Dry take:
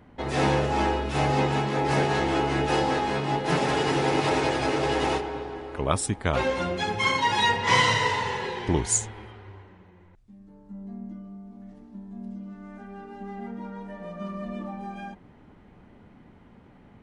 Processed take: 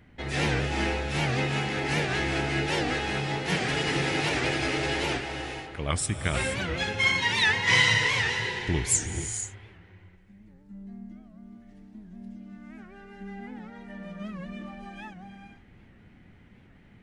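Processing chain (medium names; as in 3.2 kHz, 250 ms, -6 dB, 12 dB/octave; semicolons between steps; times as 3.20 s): ten-band graphic EQ 250 Hz -4 dB, 500 Hz -5 dB, 1 kHz -10 dB, 2 kHz +5 dB; gated-style reverb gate 500 ms rising, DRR 6.5 dB; warped record 78 rpm, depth 160 cents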